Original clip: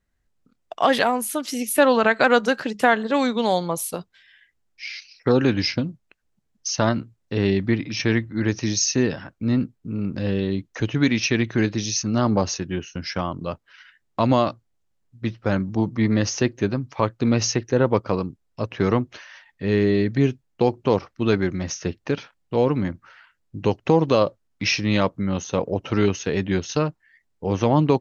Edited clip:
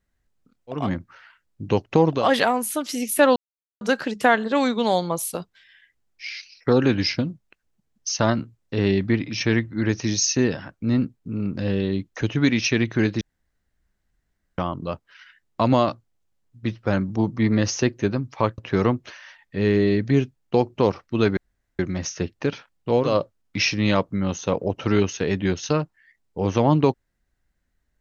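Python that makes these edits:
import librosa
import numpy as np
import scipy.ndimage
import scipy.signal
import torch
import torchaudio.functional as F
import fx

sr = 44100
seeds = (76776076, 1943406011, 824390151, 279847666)

y = fx.edit(x, sr, fx.silence(start_s=1.95, length_s=0.45),
    fx.room_tone_fill(start_s=11.8, length_s=1.37),
    fx.cut(start_s=17.17, length_s=1.48),
    fx.insert_room_tone(at_s=21.44, length_s=0.42),
    fx.move(start_s=22.73, length_s=1.41, to_s=0.79, crossfade_s=0.24), tone=tone)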